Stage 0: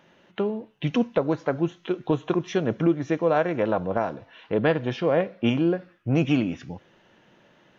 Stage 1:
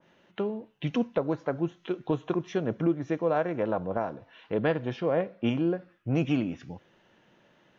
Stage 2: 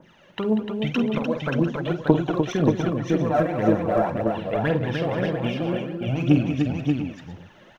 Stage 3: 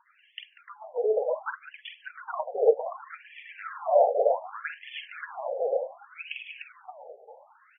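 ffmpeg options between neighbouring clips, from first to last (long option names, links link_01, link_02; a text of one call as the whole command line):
ffmpeg -i in.wav -af "adynamicequalizer=threshold=0.00891:dfrequency=1800:dqfactor=0.7:tfrequency=1800:tqfactor=0.7:attack=5:release=100:ratio=0.375:range=3:mode=cutabove:tftype=highshelf,volume=-4.5dB" out.wav
ffmpeg -i in.wav -filter_complex "[0:a]acompressor=threshold=-28dB:ratio=6,aphaser=in_gain=1:out_gain=1:delay=1.9:decay=0.72:speed=1.9:type=triangular,asplit=2[link_01][link_02];[link_02]aecho=0:1:47|191|299|581|698:0.355|0.282|0.531|0.596|0.224[link_03];[link_01][link_03]amix=inputs=2:normalize=0,volume=5.5dB" out.wav
ffmpeg -i in.wav -af "highpass=frequency=360:width_type=q:width=3.6,equalizer=frequency=1800:width=5:gain=-8,afftfilt=real='re*between(b*sr/1024,580*pow(2500/580,0.5+0.5*sin(2*PI*0.66*pts/sr))/1.41,580*pow(2500/580,0.5+0.5*sin(2*PI*0.66*pts/sr))*1.41)':imag='im*between(b*sr/1024,580*pow(2500/580,0.5+0.5*sin(2*PI*0.66*pts/sr))/1.41,580*pow(2500/580,0.5+0.5*sin(2*PI*0.66*pts/sr))*1.41)':win_size=1024:overlap=0.75" out.wav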